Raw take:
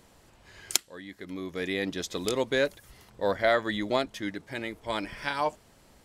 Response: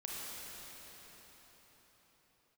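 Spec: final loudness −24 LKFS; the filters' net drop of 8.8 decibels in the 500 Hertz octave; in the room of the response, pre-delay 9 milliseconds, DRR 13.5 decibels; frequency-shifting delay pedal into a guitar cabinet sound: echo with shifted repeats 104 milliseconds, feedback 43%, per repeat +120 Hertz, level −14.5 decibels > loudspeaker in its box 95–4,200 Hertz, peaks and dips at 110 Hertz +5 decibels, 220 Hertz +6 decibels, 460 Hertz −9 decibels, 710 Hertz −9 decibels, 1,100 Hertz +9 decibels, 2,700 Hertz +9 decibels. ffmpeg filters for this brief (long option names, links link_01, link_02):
-filter_complex "[0:a]equalizer=frequency=500:width_type=o:gain=-4.5,asplit=2[link_01][link_02];[1:a]atrim=start_sample=2205,adelay=9[link_03];[link_02][link_03]afir=irnorm=-1:irlink=0,volume=-14.5dB[link_04];[link_01][link_04]amix=inputs=2:normalize=0,asplit=5[link_05][link_06][link_07][link_08][link_09];[link_06]adelay=104,afreqshift=120,volume=-14.5dB[link_10];[link_07]adelay=208,afreqshift=240,volume=-21.8dB[link_11];[link_08]adelay=312,afreqshift=360,volume=-29.2dB[link_12];[link_09]adelay=416,afreqshift=480,volume=-36.5dB[link_13];[link_05][link_10][link_11][link_12][link_13]amix=inputs=5:normalize=0,highpass=95,equalizer=frequency=110:width_type=q:width=4:gain=5,equalizer=frequency=220:width_type=q:width=4:gain=6,equalizer=frequency=460:width_type=q:width=4:gain=-9,equalizer=frequency=710:width_type=q:width=4:gain=-9,equalizer=frequency=1100:width_type=q:width=4:gain=9,equalizer=frequency=2700:width_type=q:width=4:gain=9,lowpass=frequency=4200:width=0.5412,lowpass=frequency=4200:width=1.3066,volume=7dB"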